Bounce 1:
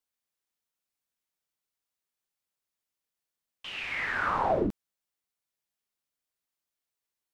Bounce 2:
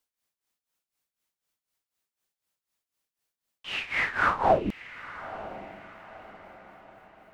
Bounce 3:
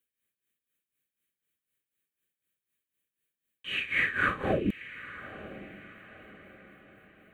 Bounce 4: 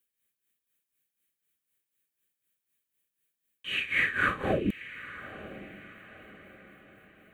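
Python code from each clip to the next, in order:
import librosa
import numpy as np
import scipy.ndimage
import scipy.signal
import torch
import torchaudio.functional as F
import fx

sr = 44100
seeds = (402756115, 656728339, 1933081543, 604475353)

y1 = x * (1.0 - 0.82 / 2.0 + 0.82 / 2.0 * np.cos(2.0 * np.pi * 4.0 * (np.arange(len(x)) / sr)))
y1 = fx.echo_diffused(y1, sr, ms=951, feedback_pct=43, wet_db=-15)
y1 = F.gain(torch.from_numpy(y1), 7.0).numpy()
y2 = fx.fixed_phaser(y1, sr, hz=2200.0, stages=4)
y2 = fx.notch_comb(y2, sr, f0_hz=690.0)
y2 = F.gain(torch.from_numpy(y2), 3.0).numpy()
y3 = fx.high_shelf(y2, sr, hz=4600.0, db=5.0)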